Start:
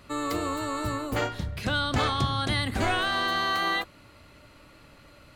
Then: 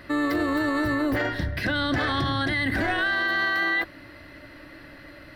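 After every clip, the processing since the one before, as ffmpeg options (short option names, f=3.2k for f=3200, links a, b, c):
-af "superequalizer=6b=2.51:8b=1.58:11b=3.55:15b=0.282:16b=0.562,alimiter=limit=-21dB:level=0:latency=1:release=23,volume=4dB"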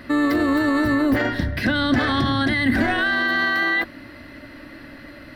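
-af "equalizer=f=240:t=o:w=0.26:g=12.5,volume=3.5dB"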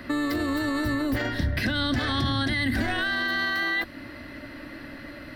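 -filter_complex "[0:a]acrossover=split=120|3000[a][b][c];[b]acompressor=threshold=-28dB:ratio=3[d];[a][d][c]amix=inputs=3:normalize=0"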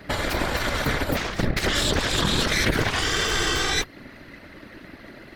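-af "aeval=exprs='0.211*(cos(1*acos(clip(val(0)/0.211,-1,1)))-cos(1*PI/2))+0.0211*(cos(3*acos(clip(val(0)/0.211,-1,1)))-cos(3*PI/2))+0.075*(cos(4*acos(clip(val(0)/0.211,-1,1)))-cos(4*PI/2))+0.0376*(cos(7*acos(clip(val(0)/0.211,-1,1)))-cos(7*PI/2))':c=same,afftfilt=real='hypot(re,im)*cos(2*PI*random(0))':imag='hypot(re,im)*sin(2*PI*random(1))':win_size=512:overlap=0.75,volume=8.5dB"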